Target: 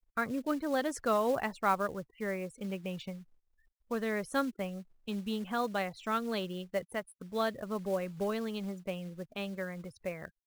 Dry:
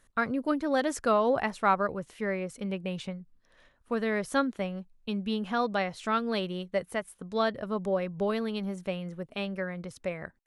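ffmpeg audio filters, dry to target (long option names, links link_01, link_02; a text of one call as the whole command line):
ffmpeg -i in.wav -af "afftfilt=real='re*gte(hypot(re,im),0.00562)':imag='im*gte(hypot(re,im),0.00562)':win_size=1024:overlap=0.75,acrusher=bits=5:mode=log:mix=0:aa=0.000001,volume=-4.5dB" out.wav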